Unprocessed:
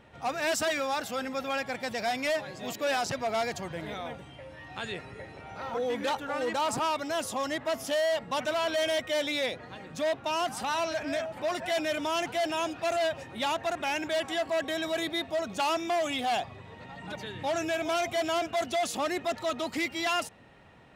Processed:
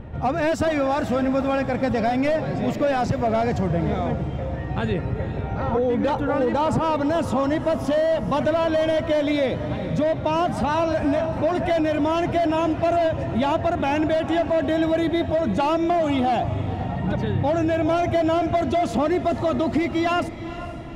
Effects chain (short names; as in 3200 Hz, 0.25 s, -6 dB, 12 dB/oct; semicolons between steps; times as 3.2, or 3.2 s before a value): tilt -4.5 dB/oct; compressor, threshold -27 dBFS, peak gain reduction 7 dB; diffused feedback echo 0.466 s, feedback 49%, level -12.5 dB; gain +9 dB